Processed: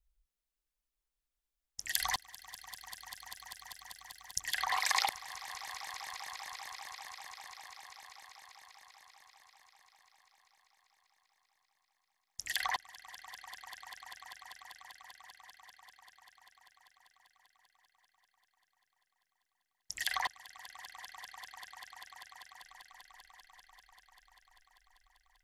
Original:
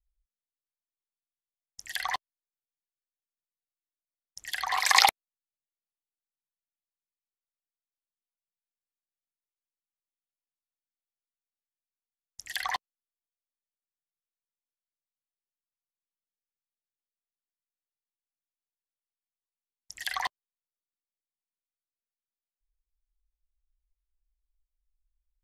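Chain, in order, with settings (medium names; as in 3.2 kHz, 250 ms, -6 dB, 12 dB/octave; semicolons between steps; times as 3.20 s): 1.95–4.40 s: tone controls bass +13 dB, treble +14 dB; compression 3:1, threshold -35 dBFS, peak gain reduction 15.5 dB; on a send: echo with a slow build-up 196 ms, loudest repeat 5, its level -17 dB; on the sum: trim +3 dB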